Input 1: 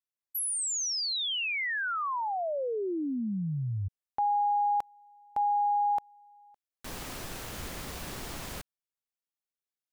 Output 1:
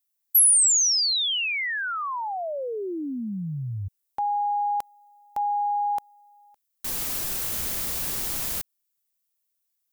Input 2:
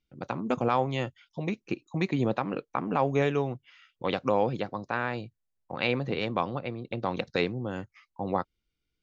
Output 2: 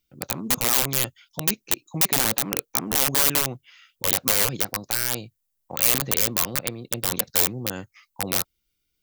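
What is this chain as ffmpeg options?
-af "aeval=exprs='(mod(12.6*val(0)+1,2)-1)/12.6':c=same,aemphasis=mode=production:type=75kf,volume=1dB"

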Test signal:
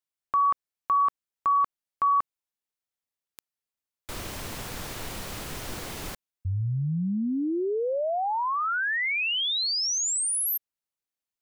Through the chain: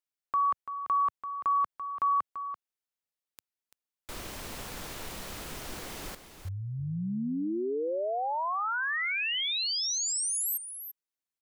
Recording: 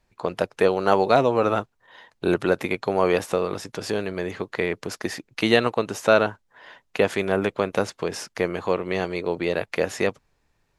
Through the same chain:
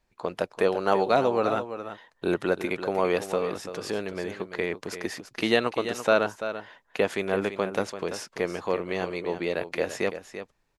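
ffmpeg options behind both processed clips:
-filter_complex "[0:a]equalizer=f=110:w=1.5:g=-5,asplit=2[a][b];[b]aecho=0:1:338:0.299[c];[a][c]amix=inputs=2:normalize=0,volume=-4dB"

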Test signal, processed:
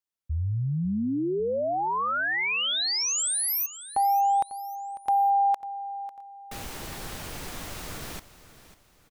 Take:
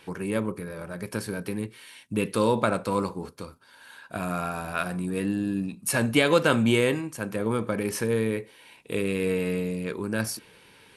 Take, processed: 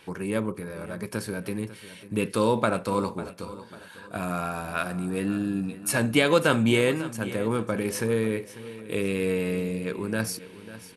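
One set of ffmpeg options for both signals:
-af "aecho=1:1:547|1094|1641:0.168|0.0638|0.0242"

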